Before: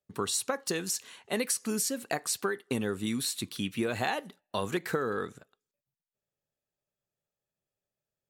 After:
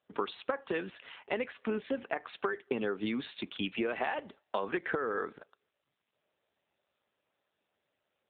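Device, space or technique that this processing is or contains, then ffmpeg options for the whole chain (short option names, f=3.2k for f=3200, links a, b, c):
voicemail: -af "highpass=330,lowpass=3.2k,acompressor=threshold=-34dB:ratio=10,volume=6.5dB" -ar 8000 -c:a libopencore_amrnb -b:a 7400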